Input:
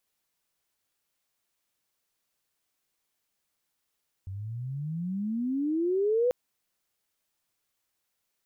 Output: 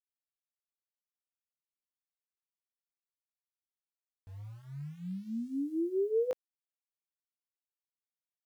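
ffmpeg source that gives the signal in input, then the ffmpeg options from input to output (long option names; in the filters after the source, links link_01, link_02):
-f lavfi -i "aevalsrc='pow(10,(-21+13.5*(t/2.04-1))/20)*sin(2*PI*92.5*2.04/(29.5*log(2)/12)*(exp(29.5*log(2)/12*t/2.04)-1))':duration=2.04:sample_rate=44100"
-af "lowshelf=frequency=190:gain=-9.5,aeval=exprs='val(0)*gte(abs(val(0)),0.00266)':channel_layout=same,flanger=delay=17.5:depth=4.3:speed=0.28"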